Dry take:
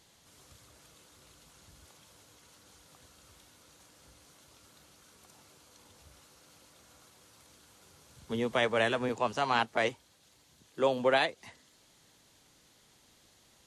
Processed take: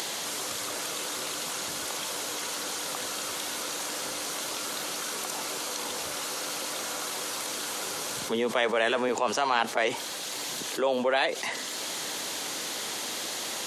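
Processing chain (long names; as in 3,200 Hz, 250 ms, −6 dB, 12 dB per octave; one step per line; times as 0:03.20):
upward compression, threshold −52 dBFS
high-pass filter 330 Hz 12 dB per octave
envelope flattener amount 70%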